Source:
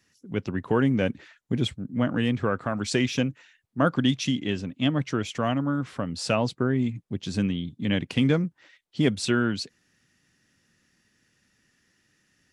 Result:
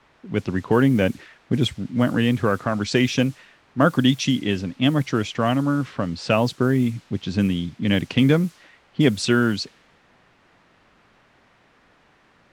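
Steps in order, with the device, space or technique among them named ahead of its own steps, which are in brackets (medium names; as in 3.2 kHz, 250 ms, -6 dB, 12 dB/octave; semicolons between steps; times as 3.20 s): cassette deck with a dynamic noise filter (white noise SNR 26 dB; level-controlled noise filter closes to 1.7 kHz, open at -19.5 dBFS); trim +5 dB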